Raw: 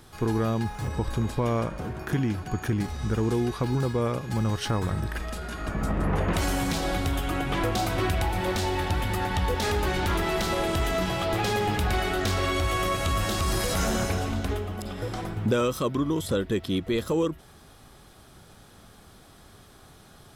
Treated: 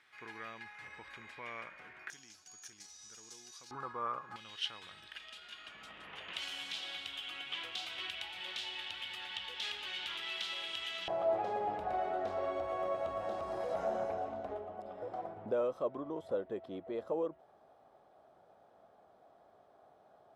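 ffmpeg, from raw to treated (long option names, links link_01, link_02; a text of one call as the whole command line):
ffmpeg -i in.wav -af "asetnsamples=nb_out_samples=441:pad=0,asendcmd='2.1 bandpass f 6100;3.71 bandpass f 1200;4.36 bandpass f 3100;11.08 bandpass f 660',bandpass=frequency=2100:width_type=q:width=3.8:csg=0" out.wav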